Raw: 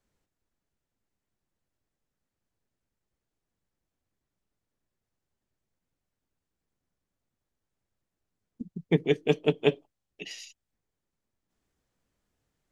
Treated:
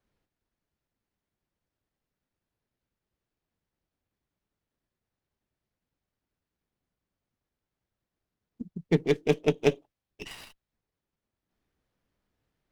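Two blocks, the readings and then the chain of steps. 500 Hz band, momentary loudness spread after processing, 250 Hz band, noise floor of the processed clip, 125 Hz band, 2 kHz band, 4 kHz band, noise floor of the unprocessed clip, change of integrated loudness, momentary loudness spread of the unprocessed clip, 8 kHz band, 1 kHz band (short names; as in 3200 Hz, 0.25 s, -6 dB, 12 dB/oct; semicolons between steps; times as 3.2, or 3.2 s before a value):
0.0 dB, 20 LU, 0.0 dB, under -85 dBFS, 0.0 dB, -1.0 dB, -3.0 dB, under -85 dBFS, 0.0 dB, 19 LU, n/a, +1.0 dB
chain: running maximum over 5 samples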